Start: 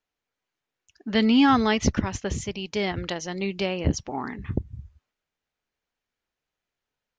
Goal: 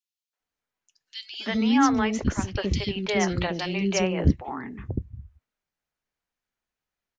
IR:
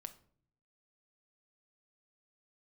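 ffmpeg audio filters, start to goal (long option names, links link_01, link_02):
-filter_complex "[0:a]acrossover=split=430|3100[link_01][link_02][link_03];[link_02]adelay=330[link_04];[link_01]adelay=400[link_05];[link_05][link_04][link_03]amix=inputs=3:normalize=0,flanger=delay=2.6:depth=4:regen=-78:speed=0.41:shape=triangular,asettb=1/sr,asplit=3[link_06][link_07][link_08];[link_06]atrim=end=2.554[link_09];[link_07]atrim=start=2.55:end=4.31,asetpts=PTS-STARTPTS,afade=type=in:duration=0.004:curve=qsin,afade=type=out:start_time=1.756:duration=0.004:curve=qsin,acontrast=49[link_10];[link_08]atrim=start=4.306[link_11];[link_09][link_10]acrossfade=duration=0.004:curve1=hsin:curve2=qsin[link_12];[link_12][link_11]acrossfade=duration=0.004:curve1=qsin:curve2=hsin,volume=3dB"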